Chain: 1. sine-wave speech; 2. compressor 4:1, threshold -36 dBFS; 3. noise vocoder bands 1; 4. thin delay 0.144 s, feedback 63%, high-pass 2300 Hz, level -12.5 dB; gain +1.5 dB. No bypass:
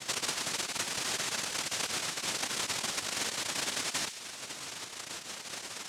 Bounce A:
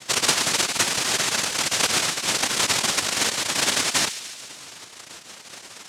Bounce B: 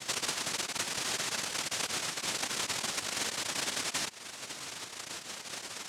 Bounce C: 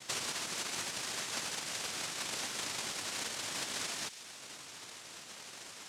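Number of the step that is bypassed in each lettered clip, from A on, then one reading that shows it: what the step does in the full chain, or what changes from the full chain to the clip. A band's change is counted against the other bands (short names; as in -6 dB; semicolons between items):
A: 2, mean gain reduction 8.0 dB; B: 4, echo-to-direct -16.5 dB to none; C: 1, momentary loudness spread change +2 LU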